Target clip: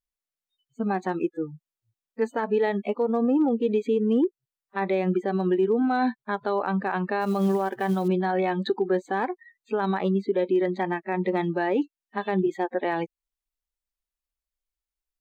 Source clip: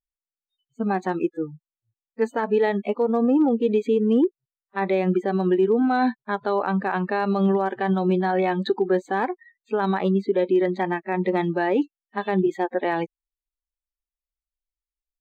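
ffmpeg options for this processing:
ffmpeg -i in.wav -filter_complex "[0:a]asplit=2[link_01][link_02];[link_02]acompressor=threshold=-33dB:ratio=10,volume=-1.5dB[link_03];[link_01][link_03]amix=inputs=2:normalize=0,asettb=1/sr,asplit=3[link_04][link_05][link_06];[link_04]atrim=end=7.214[link_07];[link_05]atrim=start=7.21:end=8.08,asetpts=PTS-STARTPTS,afade=type=in:duration=0.004:curve=qsin,afade=type=out:start_time=0.866:duration=0.004:curve=qsin,acrusher=bits=7:mode=log:mix=0:aa=0.000001[link_08];[link_06]atrim=start=8.076[link_09];[link_07][link_08]acrossfade=duration=0.004:curve1=hsin:curve2=qsin[link_10];[link_10][link_09]acrossfade=duration=0.004:curve1=qsin:curve2=hsin,volume=-4dB" out.wav

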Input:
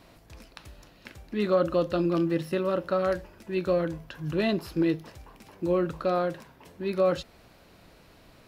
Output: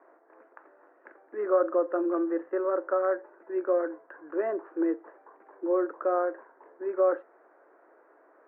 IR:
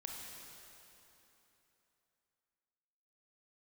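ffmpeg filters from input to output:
-af "asuperpass=centerf=750:order=12:qfactor=0.53"

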